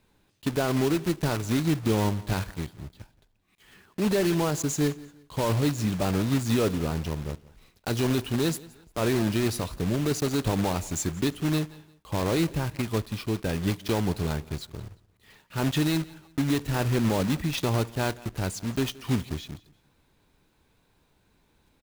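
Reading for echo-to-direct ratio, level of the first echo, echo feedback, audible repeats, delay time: −21.0 dB, −21.5 dB, 31%, 2, 175 ms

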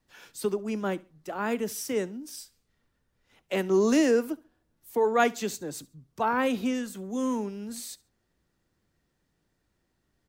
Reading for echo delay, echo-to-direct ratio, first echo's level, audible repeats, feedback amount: 69 ms, −22.0 dB, −22.5 dB, 2, 28%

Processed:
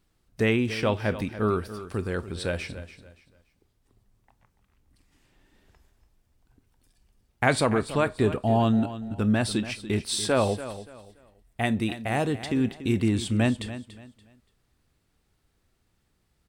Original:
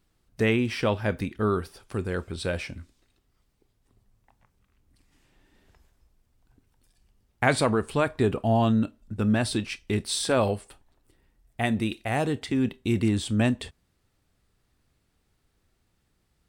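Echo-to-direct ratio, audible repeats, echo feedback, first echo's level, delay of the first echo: −13.0 dB, 2, 28%, −13.5 dB, 287 ms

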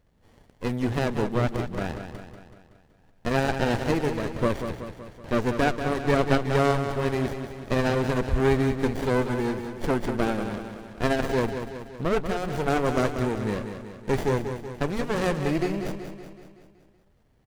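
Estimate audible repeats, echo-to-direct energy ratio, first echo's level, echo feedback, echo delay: 6, −7.0 dB, −8.5 dB, 55%, 188 ms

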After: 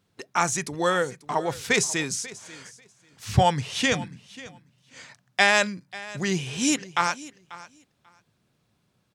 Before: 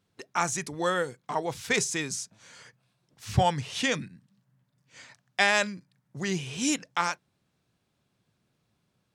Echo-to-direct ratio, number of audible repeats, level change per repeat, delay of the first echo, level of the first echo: −18.5 dB, 2, −16.0 dB, 540 ms, −18.5 dB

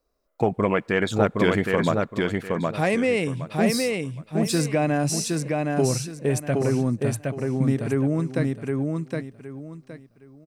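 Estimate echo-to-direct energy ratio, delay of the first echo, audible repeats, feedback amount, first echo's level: −2.5 dB, 766 ms, 3, 26%, −3.0 dB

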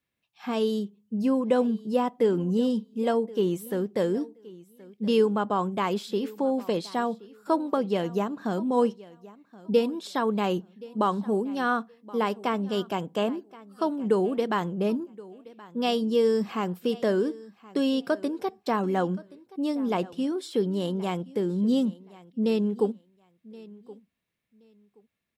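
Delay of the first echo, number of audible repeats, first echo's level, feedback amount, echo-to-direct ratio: 1,074 ms, 2, −20.5 dB, 20%, −20.5 dB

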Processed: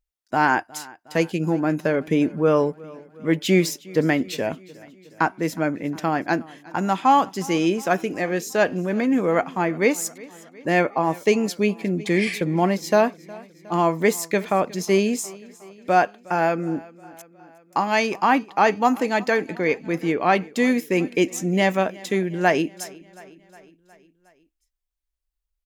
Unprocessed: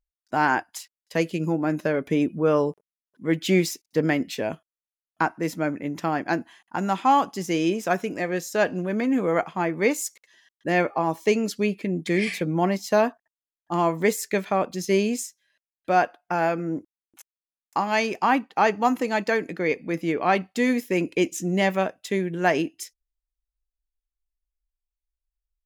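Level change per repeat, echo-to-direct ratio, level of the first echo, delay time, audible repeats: −4.5 dB, −20.0 dB, −22.0 dB, 362 ms, 3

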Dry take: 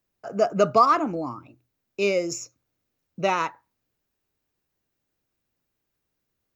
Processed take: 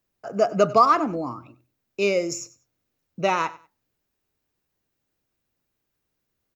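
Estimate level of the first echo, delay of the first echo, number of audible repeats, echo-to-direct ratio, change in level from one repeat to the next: −19.0 dB, 96 ms, 2, −19.0 dB, −13.0 dB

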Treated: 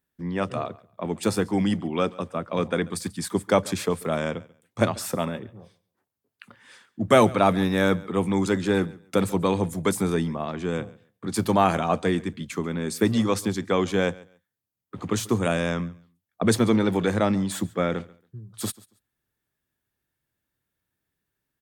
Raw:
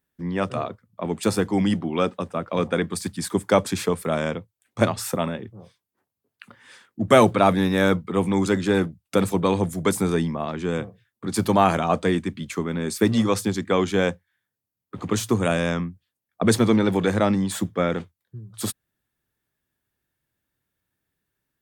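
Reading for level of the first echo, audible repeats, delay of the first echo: −22.0 dB, 1, 139 ms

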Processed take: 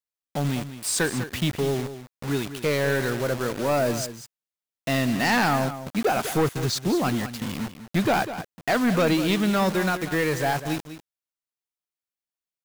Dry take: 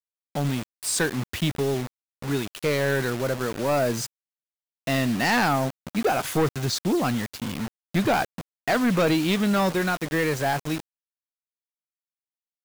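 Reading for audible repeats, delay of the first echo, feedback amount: 1, 198 ms, repeats not evenly spaced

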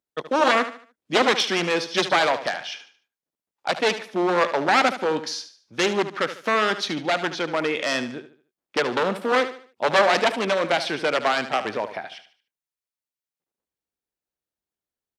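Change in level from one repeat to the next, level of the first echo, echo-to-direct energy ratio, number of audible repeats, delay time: −9.0 dB, −12.0 dB, −11.5 dB, 3, 74 ms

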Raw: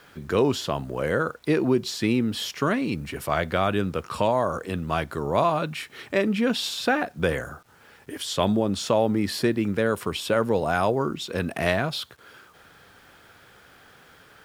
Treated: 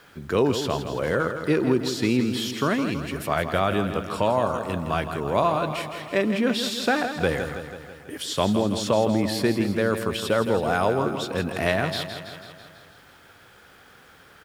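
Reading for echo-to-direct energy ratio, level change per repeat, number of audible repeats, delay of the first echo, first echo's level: −7.0 dB, −4.5 dB, 6, 164 ms, −9.0 dB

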